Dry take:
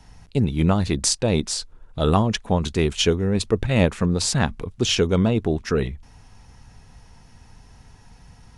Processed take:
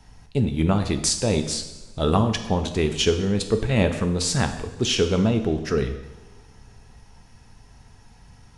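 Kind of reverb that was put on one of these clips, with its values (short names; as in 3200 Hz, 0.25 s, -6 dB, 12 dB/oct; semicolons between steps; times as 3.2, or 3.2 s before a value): two-slope reverb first 0.89 s, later 2.9 s, from -20 dB, DRR 6.5 dB; gain -2 dB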